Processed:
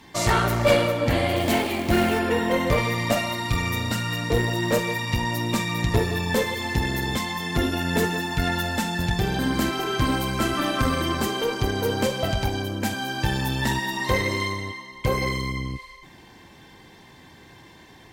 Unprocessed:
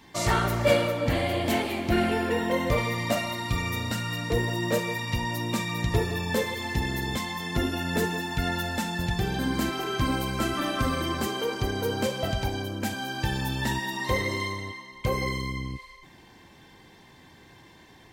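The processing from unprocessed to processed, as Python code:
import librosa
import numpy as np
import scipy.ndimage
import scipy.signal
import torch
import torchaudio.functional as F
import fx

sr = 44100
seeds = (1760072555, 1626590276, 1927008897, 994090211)

y = fx.tube_stage(x, sr, drive_db=15.0, bias=0.5)
y = fx.quant_float(y, sr, bits=2, at=(1.36, 2.19))
y = y * 10.0 ** (6.0 / 20.0)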